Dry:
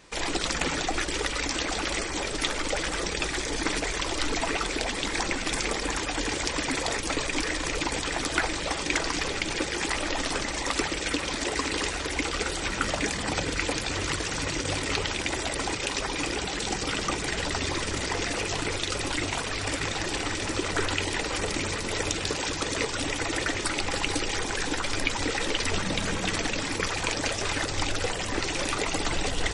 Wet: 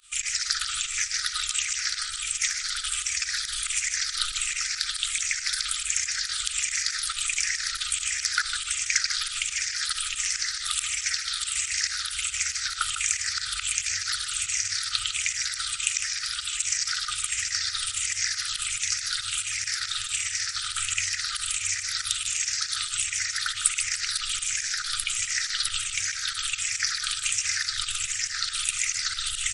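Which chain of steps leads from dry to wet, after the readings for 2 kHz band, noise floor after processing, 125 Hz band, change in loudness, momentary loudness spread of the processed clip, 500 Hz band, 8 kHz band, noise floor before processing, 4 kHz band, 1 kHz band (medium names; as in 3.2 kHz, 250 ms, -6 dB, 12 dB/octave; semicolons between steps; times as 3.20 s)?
-1.0 dB, -36 dBFS, -16.0 dB, +2.0 dB, 2 LU, under -40 dB, +8.0 dB, -32 dBFS, +3.5 dB, -8.0 dB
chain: drifting ripple filter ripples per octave 0.64, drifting -1.4 Hz, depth 13 dB; FFT band-reject 120–1200 Hz; volume shaper 139 bpm, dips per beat 2, -22 dB, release 62 ms; tone controls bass -12 dB, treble +11 dB; on a send: feedback delay 153 ms, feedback 33%, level -9.5 dB; on the sum: trim -4 dB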